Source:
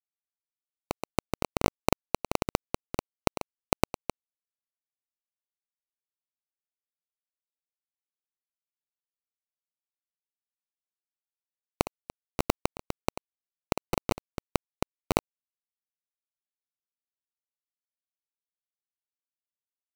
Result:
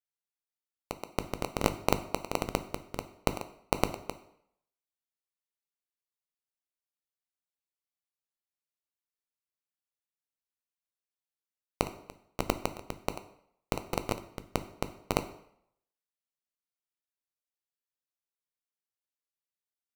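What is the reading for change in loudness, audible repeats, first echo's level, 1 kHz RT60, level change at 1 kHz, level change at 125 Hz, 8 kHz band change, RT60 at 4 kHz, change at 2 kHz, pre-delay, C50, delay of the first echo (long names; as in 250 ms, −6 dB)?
−3.5 dB, no echo audible, no echo audible, 0.70 s, −3.0 dB, −4.0 dB, −3.0 dB, 0.60 s, −3.0 dB, 8 ms, 14.0 dB, no echo audible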